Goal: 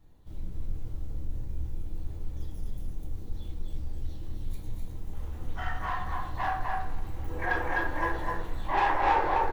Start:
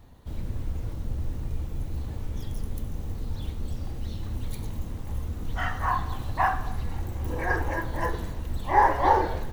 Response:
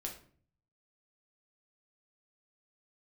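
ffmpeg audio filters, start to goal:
-filter_complex "[0:a]aecho=1:1:253:0.631,asoftclip=type=tanh:threshold=-20.5dB,asetnsamples=n=441:p=0,asendcmd='5.13 equalizer g 5.5;7.42 equalizer g 11.5',equalizer=f=1.3k:t=o:w=2.7:g=-2.5[a];[1:a]atrim=start_sample=2205[b];[a][b]afir=irnorm=-1:irlink=0,volume=-7.5dB"

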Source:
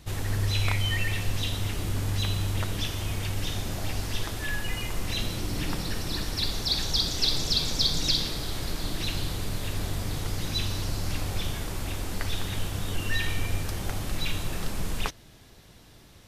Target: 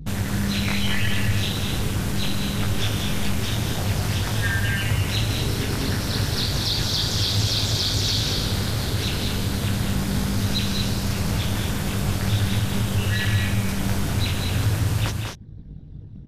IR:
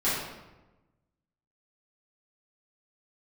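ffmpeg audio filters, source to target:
-filter_complex "[0:a]anlmdn=0.0631,apsyclip=23.5dB,acompressor=threshold=-28dB:ratio=2,flanger=delay=17.5:depth=6:speed=0.27,aeval=exprs='val(0)*sin(2*PI*100*n/s)':c=same,equalizer=f=1.5k:w=6.2:g=4,asplit=2[a][b];[b]aecho=0:1:193|230:0.501|0.447[c];[a][c]amix=inputs=2:normalize=0"

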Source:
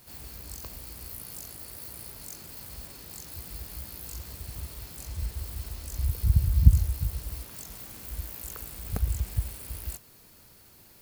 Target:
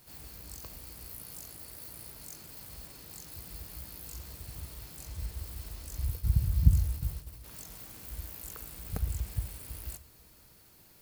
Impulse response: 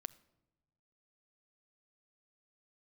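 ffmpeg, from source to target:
-filter_complex "[0:a]asplit=3[a][b][c];[a]afade=t=out:st=6.08:d=0.02[d];[b]agate=range=-33dB:threshold=-28dB:ratio=3:detection=peak,afade=t=in:st=6.08:d=0.02,afade=t=out:st=7.43:d=0.02[e];[c]afade=t=in:st=7.43:d=0.02[f];[d][e][f]amix=inputs=3:normalize=0[g];[1:a]atrim=start_sample=2205[h];[g][h]afir=irnorm=-1:irlink=0"

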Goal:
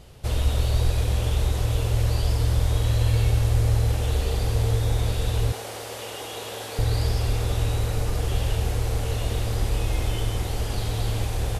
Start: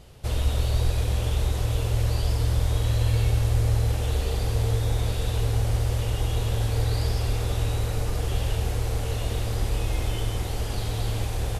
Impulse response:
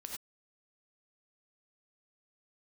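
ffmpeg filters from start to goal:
-filter_complex "[0:a]asettb=1/sr,asplit=3[a][b][c];[a]atrim=end=5.524[d];[b]atrim=start=5.52:end=6.79,asetpts=PTS-STARTPTS,afade=t=in:d=0.004:c=qsin,afade=t=out:st=1.266:d=0.004:c=qsin,highpass=390[e];[c]atrim=start=6.786[f];[d][e]acrossfade=d=0.004:c1=hsin:c2=qsin[g];[g][f]acrossfade=d=0.004:c1=qsin:c2=hsin,volume=1.5dB"

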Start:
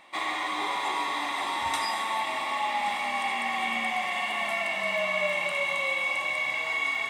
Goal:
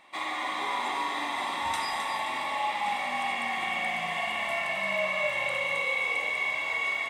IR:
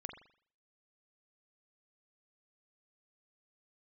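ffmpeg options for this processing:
-filter_complex "[0:a]asplit=5[a][b][c][d][e];[b]adelay=263,afreqshift=-62,volume=-8.5dB[f];[c]adelay=526,afreqshift=-124,volume=-17.9dB[g];[d]adelay=789,afreqshift=-186,volume=-27.2dB[h];[e]adelay=1052,afreqshift=-248,volume=-36.6dB[i];[a][f][g][h][i]amix=inputs=5:normalize=0[j];[1:a]atrim=start_sample=2205,atrim=end_sample=3528[k];[j][k]afir=irnorm=-1:irlink=0,volume=1.5dB"

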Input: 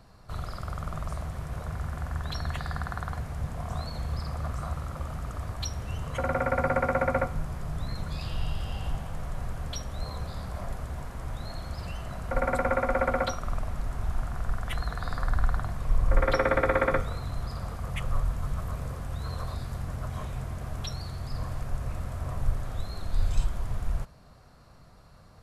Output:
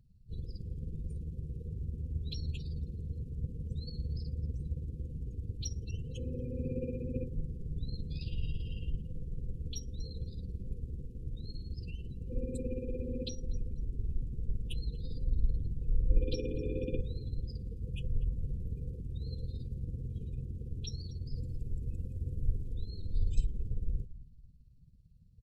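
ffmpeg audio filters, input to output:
-filter_complex "[0:a]asettb=1/sr,asplit=3[a][b][c];[a]atrim=end=21.364[d];[b]atrim=start=21.36:end=22.75,asetpts=PTS-STARTPTS,afade=t=in:d=0.004:c=qsin,afade=t=out:st=1.386:d=0.004:c=qsin,highshelf=f=5.6k:g=6[e];[c]atrim=start=22.746[f];[d][e]acrossfade=d=0.004:c1=hsin:c2=qsin[g];[g][f]acrossfade=d=0.004:c1=qsin:c2=hsin,aecho=1:1:243|486|729:0.158|0.0618|0.0241,tremolo=f=18:d=0.47,afftfilt=real='re*(1-between(b*sr/4096,520,2400))':imag='im*(1-between(b*sr/4096,520,2400))':win_size=4096:overlap=0.75,afftdn=nr=21:nf=-47,equalizer=f=1.5k:w=0.69:g=-4,volume=-2.5dB"

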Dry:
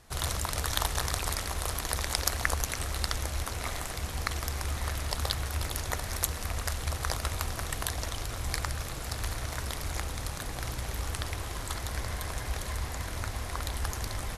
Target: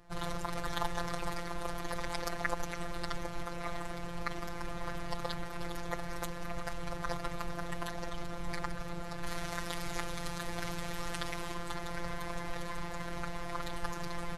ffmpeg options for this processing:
-af "asetnsamples=n=441:p=0,asendcmd='9.27 lowpass f 3700;11.54 lowpass f 1800',lowpass=f=1.1k:p=1,afftfilt=real='hypot(re,im)*cos(PI*b)':imag='0':win_size=1024:overlap=0.75,volume=4dB"

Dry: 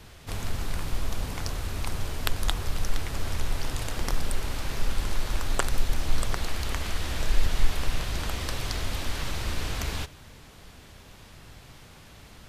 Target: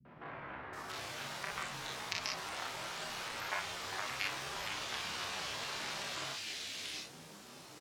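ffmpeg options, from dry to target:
-filter_complex "[0:a]highpass=140,lowpass=7.7k,acrossover=split=490[a][b];[a]acompressor=threshold=-49dB:ratio=12[c];[c][b]amix=inputs=2:normalize=0,atempo=1.6,flanger=delay=7.7:depth=9.8:regen=-32:speed=0.67:shape=sinusoidal,asetrate=68011,aresample=44100,atempo=0.64842,aecho=1:1:30|43|59:0.631|0.562|0.562,acrossover=split=5000[d][e];[e]acompressor=threshold=-55dB:ratio=4:attack=1:release=60[f];[d][f]amix=inputs=2:normalize=0,acrossover=split=200|2000[g][h][i];[h]adelay=50[j];[i]adelay=730[k];[g][j][k]amix=inputs=3:normalize=0,volume=2dB" -ar 48000 -c:a libmp3lame -b:a 112k

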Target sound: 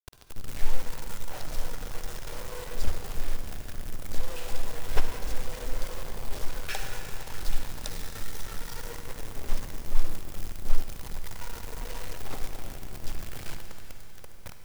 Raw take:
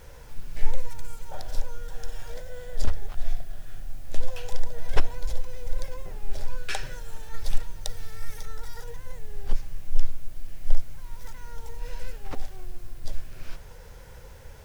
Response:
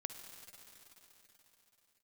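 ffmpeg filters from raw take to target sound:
-filter_complex "[0:a]acrusher=bits=5:mix=0:aa=0.000001[a];[1:a]atrim=start_sample=2205[b];[a][b]afir=irnorm=-1:irlink=0"

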